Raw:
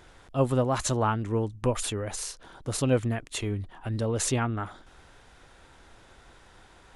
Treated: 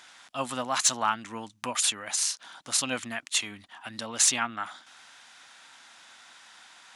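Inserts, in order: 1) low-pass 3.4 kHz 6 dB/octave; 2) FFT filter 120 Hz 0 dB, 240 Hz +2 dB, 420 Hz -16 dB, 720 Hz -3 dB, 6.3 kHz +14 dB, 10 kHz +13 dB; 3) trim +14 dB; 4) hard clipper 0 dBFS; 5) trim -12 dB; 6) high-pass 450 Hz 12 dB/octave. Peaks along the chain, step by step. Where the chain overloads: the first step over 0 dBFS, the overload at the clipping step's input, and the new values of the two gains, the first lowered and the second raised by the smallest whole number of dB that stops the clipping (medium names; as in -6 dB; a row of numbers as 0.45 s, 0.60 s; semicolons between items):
-12.0 dBFS, -8.5 dBFS, +5.5 dBFS, 0.0 dBFS, -12.0 dBFS, -11.0 dBFS; step 3, 5.5 dB; step 3 +8 dB, step 5 -6 dB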